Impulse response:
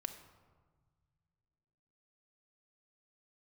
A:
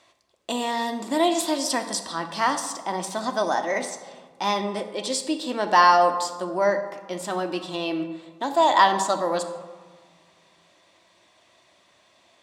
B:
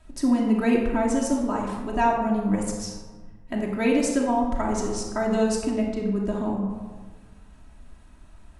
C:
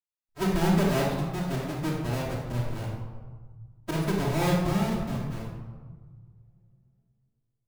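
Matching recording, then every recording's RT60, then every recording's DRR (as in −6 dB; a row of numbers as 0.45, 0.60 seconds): A; 1.5, 1.4, 1.4 seconds; 6.5, −3.0, −7.5 decibels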